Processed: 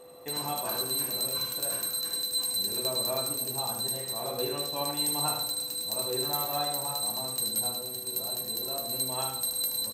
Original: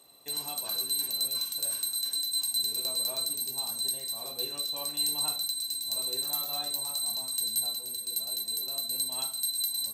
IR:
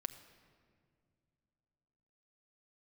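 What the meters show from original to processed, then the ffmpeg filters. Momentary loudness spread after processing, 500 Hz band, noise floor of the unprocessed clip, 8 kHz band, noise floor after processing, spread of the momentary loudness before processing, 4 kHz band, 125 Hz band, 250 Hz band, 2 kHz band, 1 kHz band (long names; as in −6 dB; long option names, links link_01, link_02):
4 LU, +11.0 dB, −41 dBFS, 0.0 dB, −38 dBFS, 4 LU, −1.0 dB, +13.0 dB, +10.0 dB, +7.0 dB, +10.5 dB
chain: -filter_complex "[0:a]aecho=1:1:77:0.501,aeval=exprs='val(0)+0.00112*sin(2*PI*500*n/s)':channel_layout=same,asplit=2[link_01][link_02];[1:a]atrim=start_sample=2205,lowpass=2300[link_03];[link_02][link_03]afir=irnorm=-1:irlink=0,volume=8.5dB[link_04];[link_01][link_04]amix=inputs=2:normalize=0"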